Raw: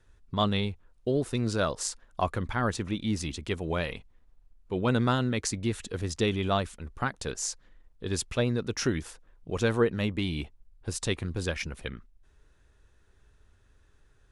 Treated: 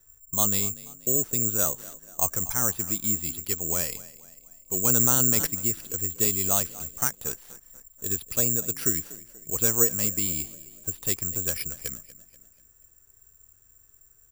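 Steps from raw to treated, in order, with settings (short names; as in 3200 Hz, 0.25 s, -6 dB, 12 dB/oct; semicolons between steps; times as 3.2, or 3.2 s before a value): 6.56–7.1 high shelf 2400 Hz +8 dB; frequency-shifting echo 0.241 s, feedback 45%, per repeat +33 Hz, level -18.5 dB; careless resampling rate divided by 6×, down filtered, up zero stuff; 4.85–5.47 fast leveller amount 70%; gain -5 dB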